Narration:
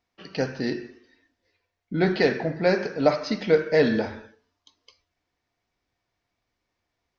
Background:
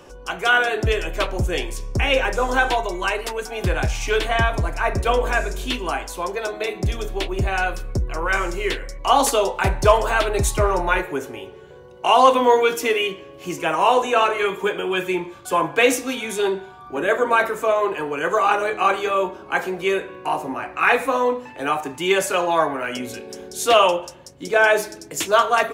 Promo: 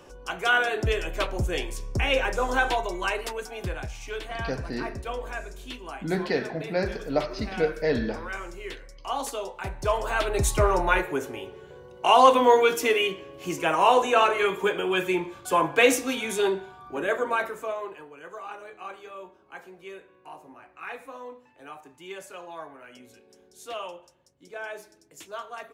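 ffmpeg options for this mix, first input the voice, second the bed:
-filter_complex "[0:a]adelay=4100,volume=0.531[s0];[1:a]volume=2.11,afade=t=out:st=3.24:d=0.62:silence=0.354813,afade=t=in:st=9.76:d=0.83:silence=0.266073,afade=t=out:st=16.36:d=1.74:silence=0.11885[s1];[s0][s1]amix=inputs=2:normalize=0"

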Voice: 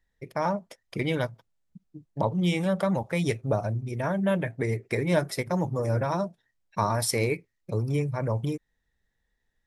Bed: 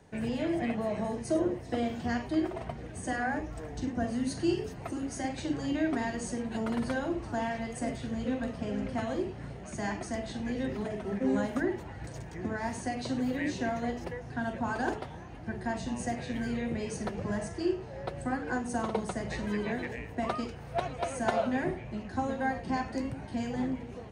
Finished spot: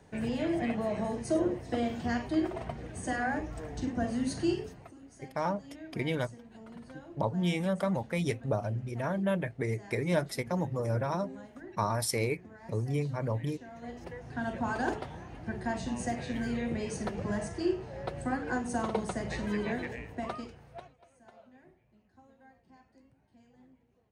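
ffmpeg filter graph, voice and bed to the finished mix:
-filter_complex "[0:a]adelay=5000,volume=0.596[s0];[1:a]volume=7.08,afade=t=out:st=4.43:d=0.5:silence=0.141254,afade=t=in:st=13.69:d=0.85:silence=0.141254,afade=t=out:st=19.72:d=1.25:silence=0.0398107[s1];[s0][s1]amix=inputs=2:normalize=0"

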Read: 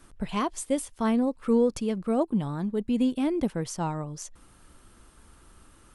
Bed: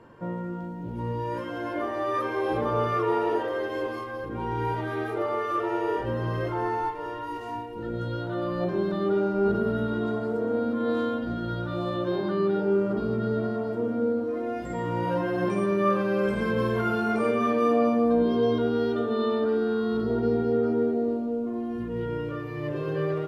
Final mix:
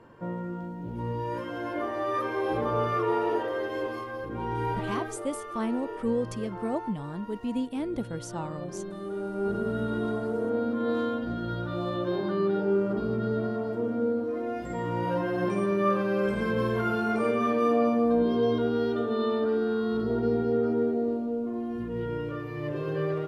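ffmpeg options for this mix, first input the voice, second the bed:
-filter_complex "[0:a]adelay=4550,volume=0.531[s0];[1:a]volume=2.37,afade=t=out:st=4.94:d=0.24:silence=0.354813,afade=t=in:st=9.11:d=0.82:silence=0.354813[s1];[s0][s1]amix=inputs=2:normalize=0"

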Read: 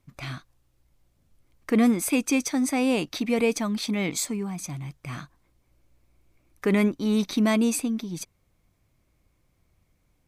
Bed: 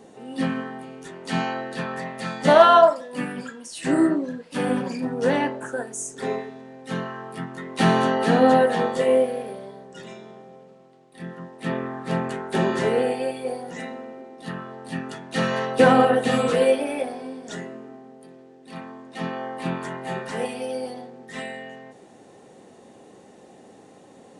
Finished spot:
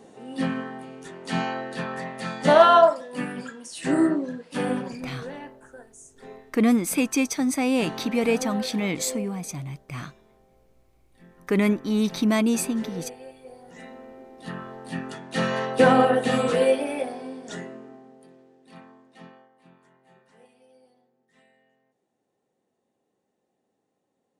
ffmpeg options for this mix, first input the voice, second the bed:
-filter_complex "[0:a]adelay=4850,volume=1.06[s0];[1:a]volume=4.73,afade=t=out:st=4.6:d=0.66:silence=0.177828,afade=t=in:st=13.51:d=1.15:silence=0.177828,afade=t=out:st=17.52:d=1.97:silence=0.0473151[s1];[s0][s1]amix=inputs=2:normalize=0"

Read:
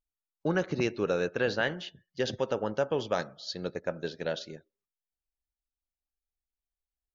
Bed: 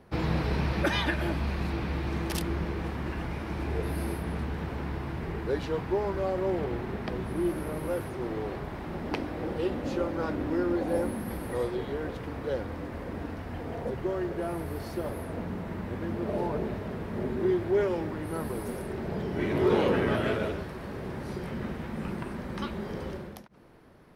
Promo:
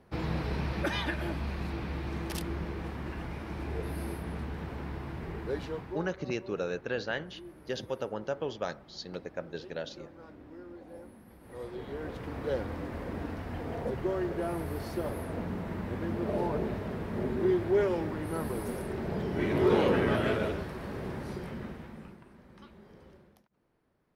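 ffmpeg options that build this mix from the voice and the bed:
-filter_complex "[0:a]adelay=5500,volume=0.562[s0];[1:a]volume=5.31,afade=t=out:st=5.6:d=0.53:silence=0.177828,afade=t=in:st=11.4:d=1.1:silence=0.112202,afade=t=out:st=21.06:d=1.13:silence=0.125893[s1];[s0][s1]amix=inputs=2:normalize=0"

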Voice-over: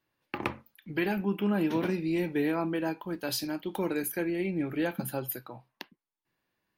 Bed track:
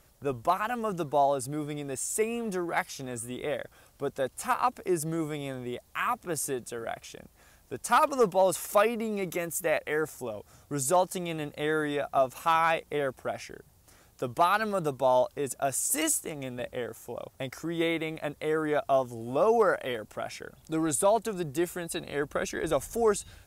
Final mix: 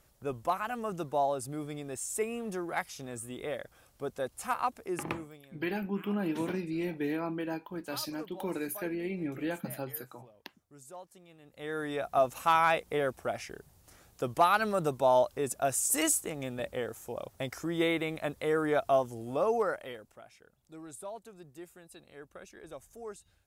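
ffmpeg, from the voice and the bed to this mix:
-filter_complex "[0:a]adelay=4650,volume=0.596[s0];[1:a]volume=7.94,afade=t=out:st=4.65:d=0.8:silence=0.11885,afade=t=in:st=11.43:d=0.82:silence=0.0749894,afade=t=out:st=18.85:d=1.4:silence=0.125893[s1];[s0][s1]amix=inputs=2:normalize=0"

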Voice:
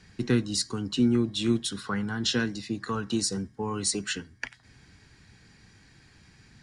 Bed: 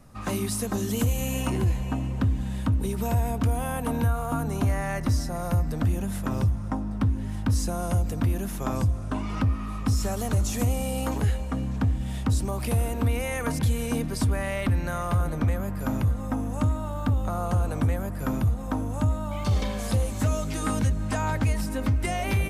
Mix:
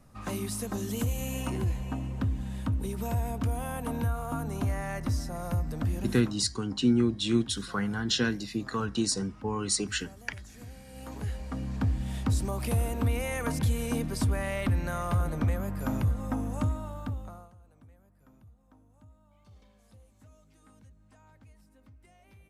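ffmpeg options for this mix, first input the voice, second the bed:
-filter_complex "[0:a]adelay=5850,volume=0.944[s0];[1:a]volume=4.73,afade=t=out:st=6.1:d=0.25:silence=0.149624,afade=t=in:st=10.87:d=1.07:silence=0.112202,afade=t=out:st=16.48:d=1.04:silence=0.0354813[s1];[s0][s1]amix=inputs=2:normalize=0"

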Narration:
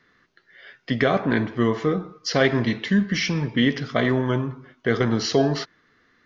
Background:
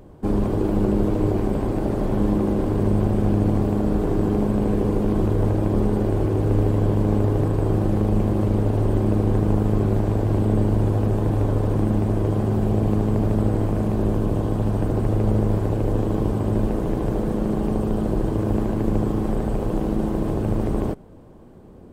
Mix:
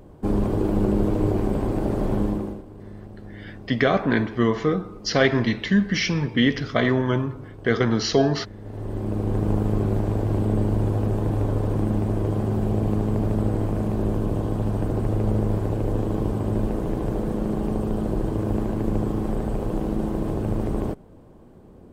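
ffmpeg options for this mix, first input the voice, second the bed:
-filter_complex "[0:a]adelay=2800,volume=1.06[s0];[1:a]volume=7.08,afade=t=out:st=2.13:d=0.5:silence=0.105925,afade=t=in:st=8.59:d=0.91:silence=0.125893[s1];[s0][s1]amix=inputs=2:normalize=0"

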